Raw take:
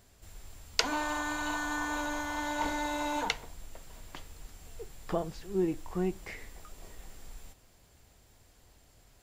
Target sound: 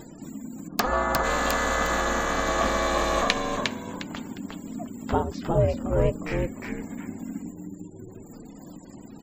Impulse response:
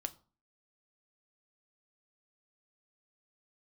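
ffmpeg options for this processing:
-filter_complex "[0:a]aeval=exprs='(mod(2.11*val(0)+1,2)-1)/2.11':channel_layout=same,asplit=5[link_01][link_02][link_03][link_04][link_05];[link_02]adelay=356,afreqshift=-78,volume=-4dB[link_06];[link_03]adelay=712,afreqshift=-156,volume=-14.5dB[link_07];[link_04]adelay=1068,afreqshift=-234,volume=-24.9dB[link_08];[link_05]adelay=1424,afreqshift=-312,volume=-35.4dB[link_09];[link_01][link_06][link_07][link_08][link_09]amix=inputs=5:normalize=0,acompressor=mode=upward:threshold=-40dB:ratio=2.5,asplit=3[link_10][link_11][link_12];[link_10]afade=type=out:start_time=0.67:duration=0.02[link_13];[link_11]highshelf=frequency=1700:width_type=q:width=1.5:gain=-7.5,afade=type=in:start_time=0.67:duration=0.02,afade=type=out:start_time=1.23:duration=0.02[link_14];[link_12]afade=type=in:start_time=1.23:duration=0.02[link_15];[link_13][link_14][link_15]amix=inputs=3:normalize=0,aeval=exprs='val(0)*sin(2*PI*240*n/s)':channel_layout=same,acontrast=78,afftfilt=real='re*gte(hypot(re,im),0.00447)':imag='im*gte(hypot(re,im),0.00447)':win_size=1024:overlap=0.75,volume=3.5dB"

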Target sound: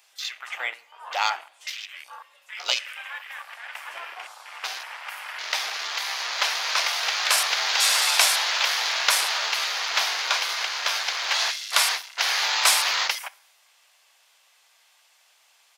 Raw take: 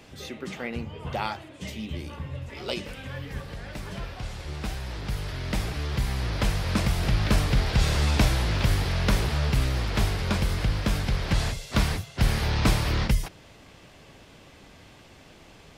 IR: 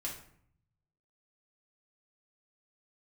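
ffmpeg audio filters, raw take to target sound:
-filter_complex "[0:a]highpass=frequency=770:width=0.5412,highpass=frequency=770:width=1.3066,aecho=1:1:118|236|354|472:0.0794|0.0445|0.0249|0.0139,afwtdn=0.00708,crystalizer=i=2.5:c=0,asplit=2[link_01][link_02];[1:a]atrim=start_sample=2205[link_03];[link_02][link_03]afir=irnorm=-1:irlink=0,volume=-15dB[link_04];[link_01][link_04]amix=inputs=2:normalize=0,volume=5.5dB"

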